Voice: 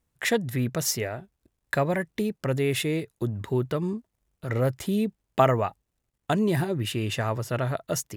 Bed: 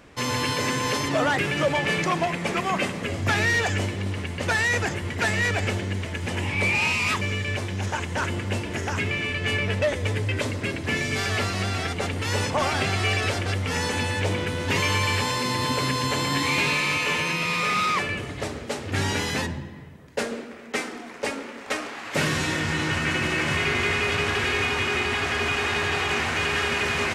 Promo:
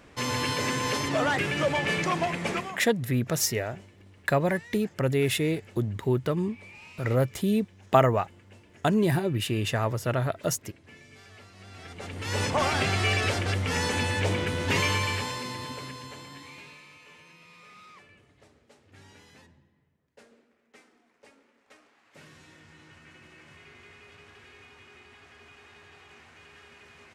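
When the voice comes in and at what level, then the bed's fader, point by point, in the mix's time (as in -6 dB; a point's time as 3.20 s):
2.55 s, +0.5 dB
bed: 2.55 s -3 dB
2.90 s -25.5 dB
11.51 s -25.5 dB
12.45 s -1.5 dB
14.81 s -1.5 dB
16.91 s -28 dB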